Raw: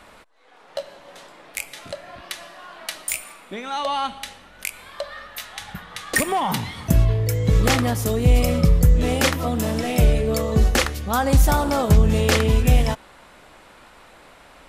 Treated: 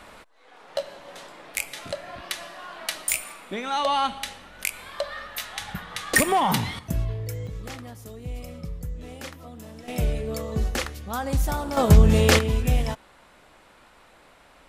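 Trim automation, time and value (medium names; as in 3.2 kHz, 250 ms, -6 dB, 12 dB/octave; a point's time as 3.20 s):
+1 dB
from 6.79 s -10 dB
from 7.47 s -19 dB
from 9.88 s -8.5 dB
from 11.77 s +1 dB
from 12.39 s -6 dB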